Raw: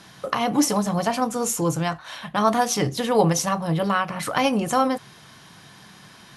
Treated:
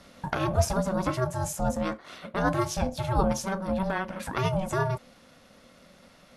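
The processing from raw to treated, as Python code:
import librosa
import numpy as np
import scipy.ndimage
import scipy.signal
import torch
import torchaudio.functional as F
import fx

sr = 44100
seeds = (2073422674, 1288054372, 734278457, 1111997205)

y = x * np.sin(2.0 * np.pi * 380.0 * np.arange(len(x)) / sr)
y = fx.tilt_shelf(y, sr, db=3.5, hz=750.0)
y = fx.rider(y, sr, range_db=4, speed_s=2.0)
y = y * 10.0 ** (-4.0 / 20.0)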